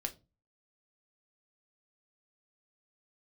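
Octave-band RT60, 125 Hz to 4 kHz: 0.50, 0.40, 0.30, 0.25, 0.20, 0.20 seconds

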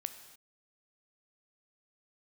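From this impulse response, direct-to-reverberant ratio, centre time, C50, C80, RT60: 9.0 dB, 13 ms, 10.0 dB, 11.5 dB, non-exponential decay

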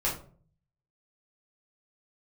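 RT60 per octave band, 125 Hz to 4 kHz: 0.90, 0.65, 0.55, 0.40, 0.30, 0.25 seconds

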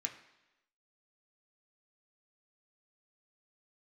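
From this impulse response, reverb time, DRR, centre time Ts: 1.0 s, 2.0 dB, 15 ms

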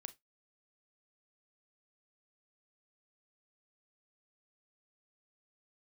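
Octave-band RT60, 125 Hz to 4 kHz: 0.15, 0.15, 0.15, 0.15, 0.15, 0.15 seconds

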